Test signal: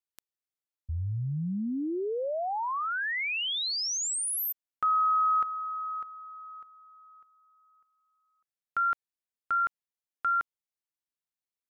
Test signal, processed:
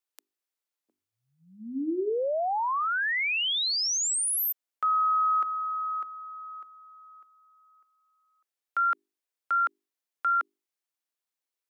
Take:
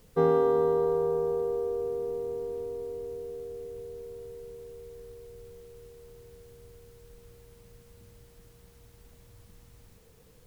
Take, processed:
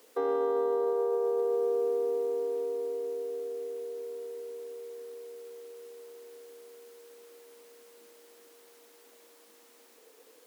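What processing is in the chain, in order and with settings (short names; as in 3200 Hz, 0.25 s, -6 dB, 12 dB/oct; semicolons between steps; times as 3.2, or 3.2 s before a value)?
steep high-pass 270 Hz 48 dB/oct; limiter -24.5 dBFS; notches 50/100/150/200/250/300/350/400 Hz; gain +3.5 dB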